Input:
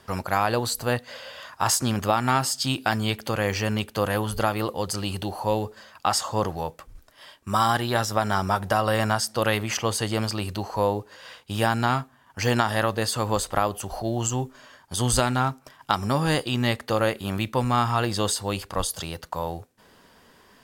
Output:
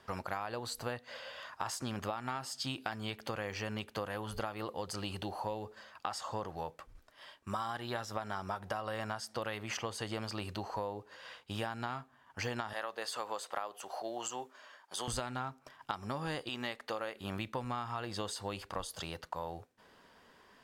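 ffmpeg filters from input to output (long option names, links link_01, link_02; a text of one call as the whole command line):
ffmpeg -i in.wav -filter_complex "[0:a]asettb=1/sr,asplit=3[link_01][link_02][link_03];[link_01]atrim=end=12.734[link_04];[link_02]atrim=start=12.73:end=15.08,asetpts=PTS-STARTPTS,afade=type=in:duration=0.004:curve=qsin,afade=type=out:start_time=2.346:duration=0.004:curve=qsin,highpass=460[link_05];[link_03]atrim=start=15.076[link_06];[link_04][link_05]acrossfade=duration=0.004:curve1=hsin:curve2=qsin[link_07];[link_07][link_06]acrossfade=duration=0.004:curve1=qsin:curve2=hsin,asettb=1/sr,asplit=3[link_08][link_09][link_10];[link_08]atrim=end=16.494[link_11];[link_09]atrim=start=16.49:end=17.17,asetpts=PTS-STARTPTS,afade=type=in:duration=0.004:curve=qsin,afade=type=out:start_time=0.676:duration=0.004:curve=qsin,equalizer=frequency=87:width=0.57:gain=-14.5[link_12];[link_10]atrim=start=17.166[link_13];[link_11][link_12]acrossfade=duration=0.004:curve1=hsin:curve2=qsin[link_14];[link_14][link_13]acrossfade=duration=0.004:curve1=qsin:curve2=hsin,lowpass=frequency=3600:poles=1,lowshelf=frequency=340:gain=-6.5,acompressor=threshold=-30dB:ratio=6,volume=-4.5dB" out.wav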